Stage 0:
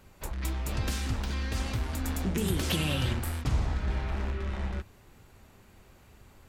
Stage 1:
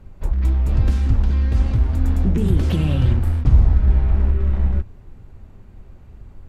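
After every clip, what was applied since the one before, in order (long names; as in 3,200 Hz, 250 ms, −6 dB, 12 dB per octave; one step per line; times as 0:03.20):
spectral tilt −3.5 dB per octave
level +1.5 dB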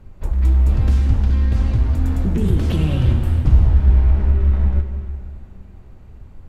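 dense smooth reverb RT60 2.8 s, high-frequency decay 1×, DRR 6.5 dB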